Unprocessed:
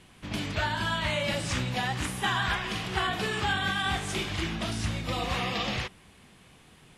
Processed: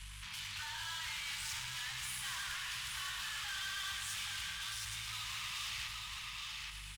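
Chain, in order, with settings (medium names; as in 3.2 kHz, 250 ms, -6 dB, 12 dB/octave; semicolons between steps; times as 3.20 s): hum 50 Hz, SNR 12 dB; in parallel at -4 dB: wavefolder -29 dBFS; on the sum: Chebyshev band-stop 200–860 Hz, order 5; bass shelf 420 Hz -7.5 dB; delay 826 ms -7.5 dB; valve stage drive 32 dB, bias 0.5; peak limiter -40.5 dBFS, peak gain reduction 11.5 dB; amplifier tone stack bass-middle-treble 10-0-10; bit-crushed delay 111 ms, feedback 80%, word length 12-bit, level -8.5 dB; trim +7.5 dB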